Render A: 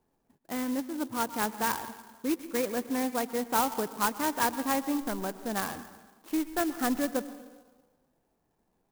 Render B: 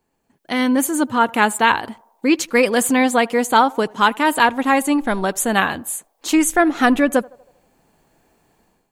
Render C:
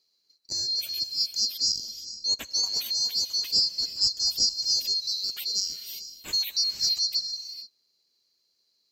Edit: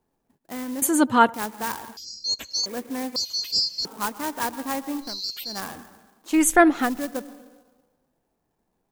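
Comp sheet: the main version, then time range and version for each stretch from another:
A
0:00.82–0:01.34: punch in from B
0:01.97–0:02.66: punch in from C
0:03.16–0:03.85: punch in from C
0:05.11–0:05.52: punch in from C, crossfade 0.24 s
0:06.37–0:06.79: punch in from B, crossfade 0.24 s

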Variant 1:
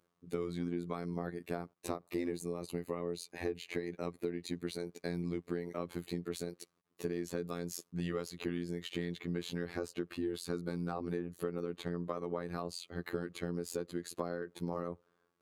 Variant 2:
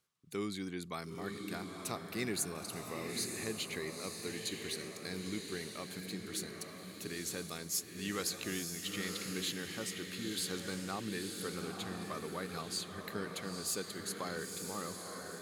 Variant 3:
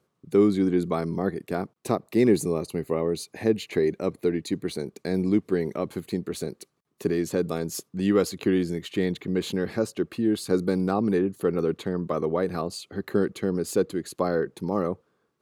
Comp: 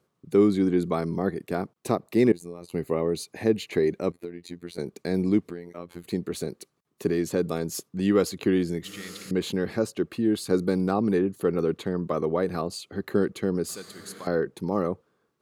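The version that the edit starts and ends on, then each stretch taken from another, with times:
3
0:02.32–0:02.72: punch in from 1
0:04.12–0:04.78: punch in from 1
0:05.50–0:06.04: punch in from 1
0:08.84–0:09.31: punch in from 2
0:13.69–0:14.27: punch in from 2

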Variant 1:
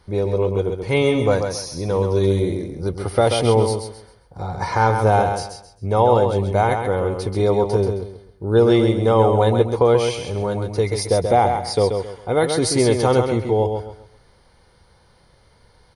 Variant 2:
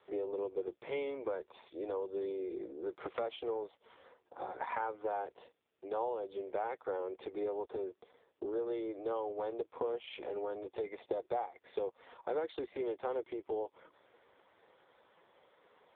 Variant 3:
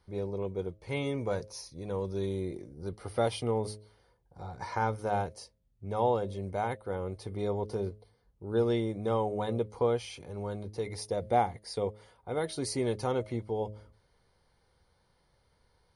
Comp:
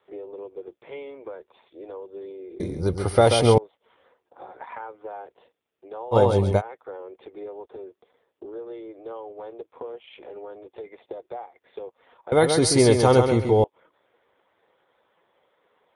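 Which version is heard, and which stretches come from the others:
2
0:02.60–0:03.58: punch in from 1
0:06.14–0:06.59: punch in from 1, crossfade 0.06 s
0:12.32–0:13.64: punch in from 1
not used: 3

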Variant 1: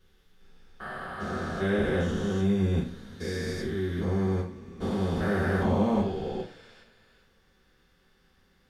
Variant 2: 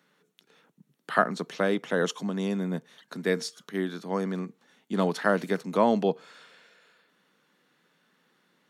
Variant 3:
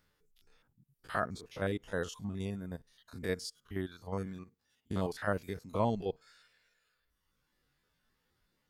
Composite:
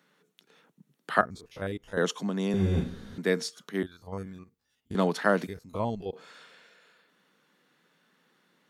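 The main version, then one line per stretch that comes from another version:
2
0:01.21–0:01.97: punch in from 3
0:02.54–0:03.18: punch in from 1
0:03.83–0:04.95: punch in from 3
0:05.47–0:06.13: punch in from 3

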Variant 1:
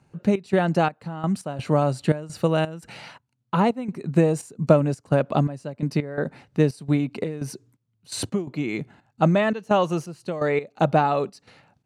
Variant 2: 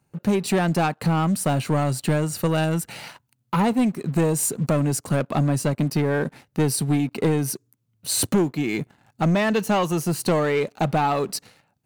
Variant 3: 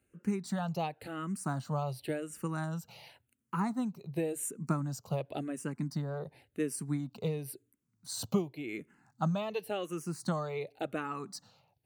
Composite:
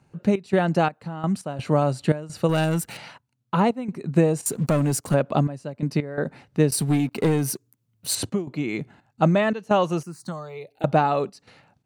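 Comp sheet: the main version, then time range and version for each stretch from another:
1
0:02.49–0:02.97: punch in from 2
0:04.46–0:05.14: punch in from 2
0:06.72–0:08.15: punch in from 2
0:10.03–0:10.84: punch in from 3

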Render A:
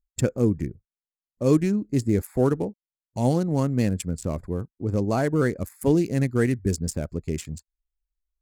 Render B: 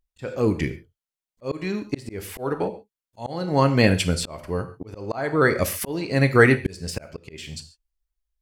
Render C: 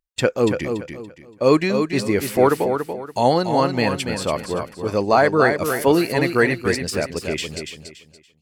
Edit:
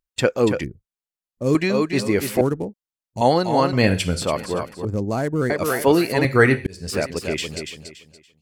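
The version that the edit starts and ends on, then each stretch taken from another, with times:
C
0:00.64–0:01.55: punch in from A
0:02.41–0:03.21: punch in from A
0:03.73–0:04.22: punch in from B
0:04.85–0:05.50: punch in from A
0:06.25–0:06.90: punch in from B

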